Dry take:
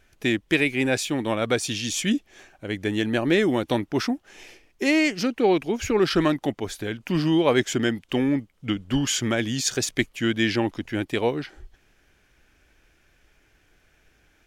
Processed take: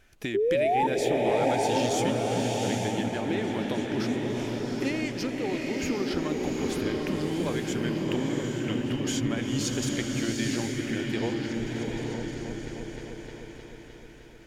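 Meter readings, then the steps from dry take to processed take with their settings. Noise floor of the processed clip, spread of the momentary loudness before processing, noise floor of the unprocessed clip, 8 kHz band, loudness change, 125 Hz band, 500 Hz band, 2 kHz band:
-47 dBFS, 9 LU, -63 dBFS, -5.5 dB, -4.5 dB, -1.5 dB, -2.5 dB, -7.5 dB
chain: compressor 4:1, threshold -32 dBFS, peak gain reduction 14.5 dB; painted sound rise, 0.34–0.87, 380–930 Hz -24 dBFS; on a send: repeats that get brighter 0.307 s, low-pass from 200 Hz, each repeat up 1 oct, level 0 dB; on the sum: bloom reverb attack 0.82 s, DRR 1 dB

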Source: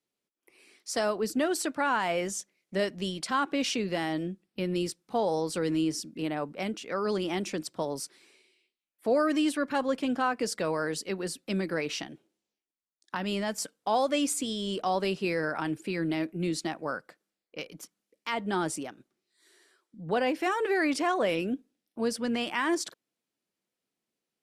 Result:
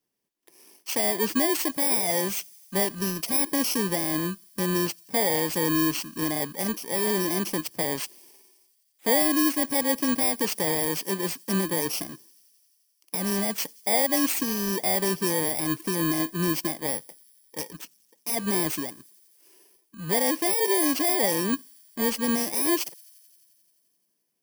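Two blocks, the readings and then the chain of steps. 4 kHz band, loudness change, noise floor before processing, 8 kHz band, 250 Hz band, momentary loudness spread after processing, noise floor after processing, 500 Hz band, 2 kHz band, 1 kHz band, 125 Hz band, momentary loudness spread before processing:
+5.0 dB, +5.5 dB, under -85 dBFS, +10.0 dB, +3.5 dB, 10 LU, -71 dBFS, +1.5 dB, +2.0 dB, -0.5 dB, +4.5 dB, 11 LU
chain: FFT order left unsorted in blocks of 32 samples; in parallel at -1.5 dB: limiter -23 dBFS, peak gain reduction 7 dB; on the sum: thin delay 87 ms, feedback 80%, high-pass 4800 Hz, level -24 dB

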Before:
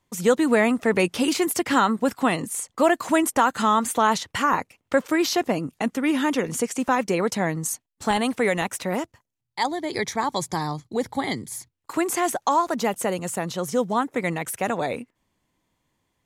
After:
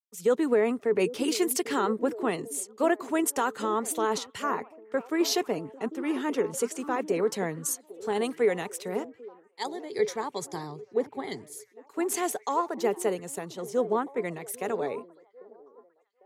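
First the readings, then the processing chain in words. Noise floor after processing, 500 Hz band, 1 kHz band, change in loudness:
-62 dBFS, -2.5 dB, -8.5 dB, -5.5 dB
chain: HPF 130 Hz; bell 420 Hz +14.5 dB 0.28 oct; vibrato 8.2 Hz 29 cents; limiter -9.5 dBFS, peak gain reduction 7.5 dB; on a send: delay with a stepping band-pass 0.798 s, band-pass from 340 Hz, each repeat 0.7 oct, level -9 dB; on the sum: three-band expander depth 100%; gain -7.5 dB

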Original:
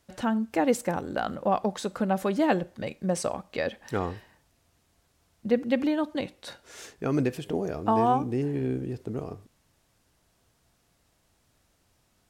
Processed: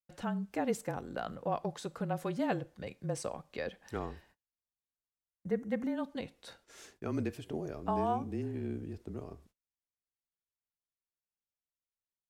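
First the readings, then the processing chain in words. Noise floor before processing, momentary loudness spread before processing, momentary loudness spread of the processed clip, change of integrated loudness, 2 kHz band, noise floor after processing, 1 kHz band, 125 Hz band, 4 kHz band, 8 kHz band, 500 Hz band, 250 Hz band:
-69 dBFS, 13 LU, 13 LU, -9.0 dB, -9.0 dB, under -85 dBFS, -9.5 dB, -7.0 dB, -9.5 dB, -9.0 dB, -9.0 dB, -9.0 dB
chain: frequency shift -28 Hz; gate -53 dBFS, range -31 dB; spectral gain 4.59–5.96, 2200–5500 Hz -10 dB; gain -9 dB

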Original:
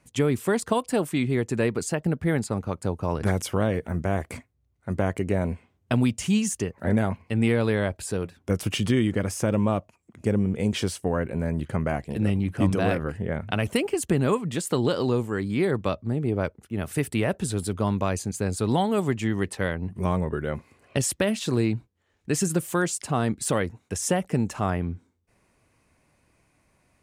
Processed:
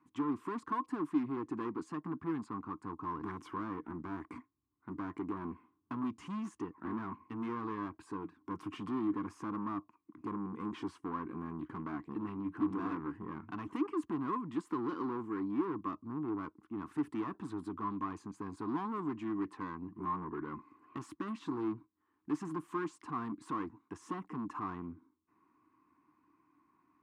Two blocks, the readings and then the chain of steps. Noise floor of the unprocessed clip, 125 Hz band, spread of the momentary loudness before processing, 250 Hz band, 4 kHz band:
-68 dBFS, -22.0 dB, 7 LU, -11.0 dB, under -20 dB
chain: soft clip -27.5 dBFS, distortion -7 dB; double band-pass 570 Hz, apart 1.8 oct; gain +5.5 dB

